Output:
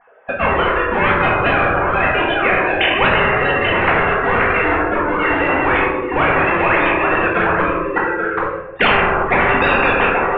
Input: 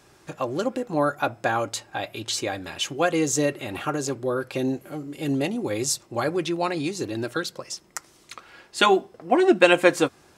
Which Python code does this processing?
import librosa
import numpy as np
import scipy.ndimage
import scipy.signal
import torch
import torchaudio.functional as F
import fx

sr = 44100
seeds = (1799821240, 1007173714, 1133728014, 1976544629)

p1 = fx.sine_speech(x, sr)
p2 = fx.leveller(p1, sr, passes=3)
p3 = scipy.signal.sosfilt(scipy.signal.bessel(8, 1400.0, 'lowpass', norm='mag', fs=sr, output='sos'), p2)
p4 = p3 + fx.echo_single(p3, sr, ms=834, db=-16.0, dry=0)
p5 = fx.room_shoebox(p4, sr, seeds[0], volume_m3=210.0, walls='mixed', distance_m=1.8)
p6 = fx.spectral_comp(p5, sr, ratio=10.0)
y = p6 * 10.0 ** (-9.5 / 20.0)